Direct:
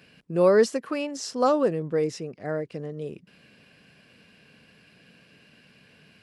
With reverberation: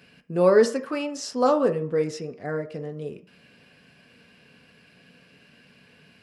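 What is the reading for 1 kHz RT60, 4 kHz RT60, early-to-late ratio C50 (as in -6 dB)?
0.55 s, 0.50 s, 14.0 dB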